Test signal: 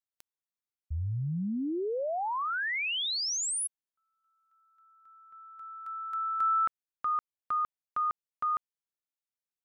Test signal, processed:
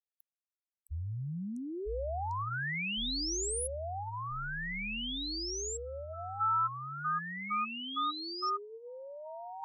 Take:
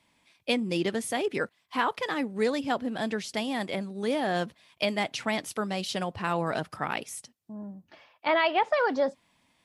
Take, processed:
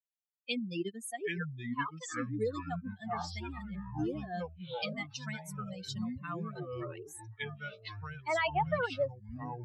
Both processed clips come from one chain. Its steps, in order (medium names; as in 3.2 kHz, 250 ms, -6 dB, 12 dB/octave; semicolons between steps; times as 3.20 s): expander on every frequency bin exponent 3; peaking EQ 290 Hz -2.5 dB 0.77 oct; ever faster or slower copies 578 ms, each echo -6 st, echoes 3; trim -2.5 dB